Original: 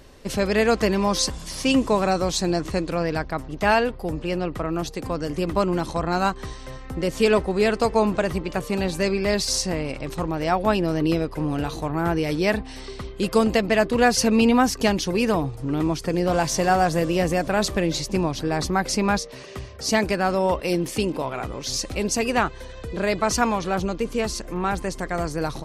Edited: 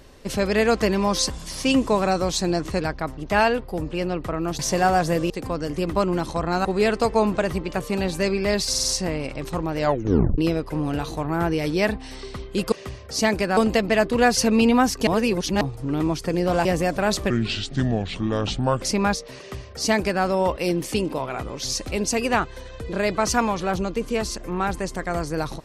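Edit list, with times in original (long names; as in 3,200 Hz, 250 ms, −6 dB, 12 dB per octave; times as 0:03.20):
0:02.80–0:03.11: remove
0:06.25–0:07.45: remove
0:09.49: stutter 0.05 s, 4 plays
0:10.43: tape stop 0.60 s
0:14.87–0:15.41: reverse
0:16.45–0:17.16: move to 0:04.90
0:17.81–0:18.86: play speed 69%
0:19.42–0:20.27: duplicate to 0:13.37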